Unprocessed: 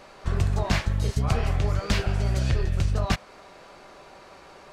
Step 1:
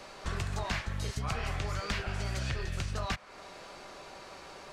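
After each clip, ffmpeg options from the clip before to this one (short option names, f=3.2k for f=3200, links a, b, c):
-filter_complex "[0:a]equalizer=f=6.1k:t=o:w=2.4:g=5,acrossover=split=130|970|2500[a][b][c][d];[a]acompressor=threshold=-35dB:ratio=4[e];[b]acompressor=threshold=-40dB:ratio=4[f];[c]acompressor=threshold=-35dB:ratio=4[g];[d]acompressor=threshold=-44dB:ratio=4[h];[e][f][g][h]amix=inputs=4:normalize=0,volume=-1dB"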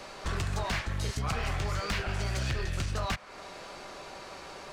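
-af "volume=29dB,asoftclip=hard,volume=-29dB,volume=3.5dB"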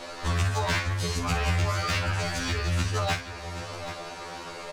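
-filter_complex "[0:a]asplit=2[a][b];[b]aecho=0:1:54|779:0.299|0.224[c];[a][c]amix=inputs=2:normalize=0,afftfilt=real='re*2*eq(mod(b,4),0)':imag='im*2*eq(mod(b,4),0)':win_size=2048:overlap=0.75,volume=7.5dB"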